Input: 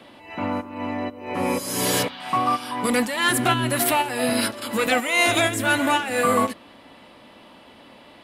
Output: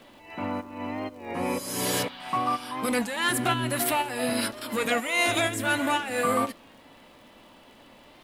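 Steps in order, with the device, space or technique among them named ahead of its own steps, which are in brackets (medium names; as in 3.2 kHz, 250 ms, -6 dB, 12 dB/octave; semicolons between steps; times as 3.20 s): warped LP (warped record 33 1/3 rpm, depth 100 cents; crackle 72 per s -42 dBFS; pink noise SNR 36 dB); trim -5 dB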